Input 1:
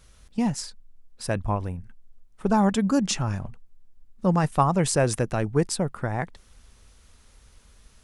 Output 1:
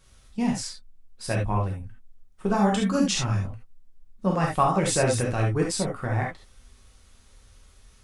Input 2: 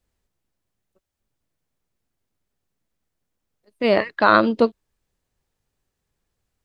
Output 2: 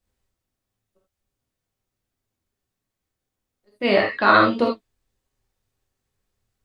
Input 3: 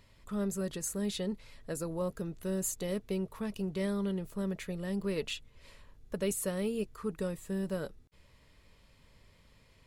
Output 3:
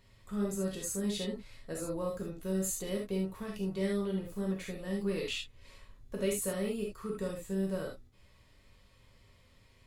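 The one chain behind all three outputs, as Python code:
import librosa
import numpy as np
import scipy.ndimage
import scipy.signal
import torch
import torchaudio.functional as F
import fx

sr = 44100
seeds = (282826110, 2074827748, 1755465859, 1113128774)

y = fx.dynamic_eq(x, sr, hz=2500.0, q=0.94, threshold_db=-42.0, ratio=4.0, max_db=4)
y = fx.rev_gated(y, sr, seeds[0], gate_ms=100, shape='flat', drr_db=-2.0)
y = y * 10.0 ** (-4.5 / 20.0)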